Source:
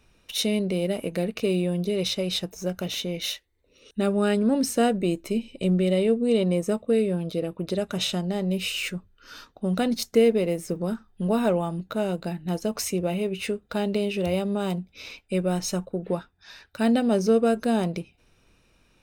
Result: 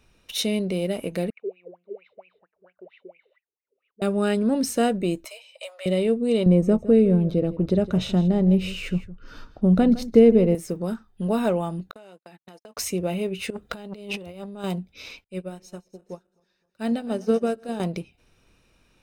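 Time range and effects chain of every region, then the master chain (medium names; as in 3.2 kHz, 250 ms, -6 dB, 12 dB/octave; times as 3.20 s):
1.30–4.02 s: wah-wah 4.4 Hz 380–2600 Hz, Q 16 + distance through air 460 m
5.25–5.86 s: steep high-pass 550 Hz 72 dB/octave + comb 6.3 ms, depth 33%
6.46–10.55 s: tilt EQ -3.5 dB/octave + delay 160 ms -16.5 dB
11.91–12.77 s: gate -31 dBFS, range -55 dB + frequency weighting A + compression 16:1, threshold -41 dBFS
13.50–14.64 s: compressor with a negative ratio -32 dBFS, ratio -0.5 + transformer saturation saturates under 1.5 kHz
15.24–17.80 s: backward echo that repeats 129 ms, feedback 67%, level -13 dB + upward expansion 2.5:1, over -35 dBFS
whole clip: none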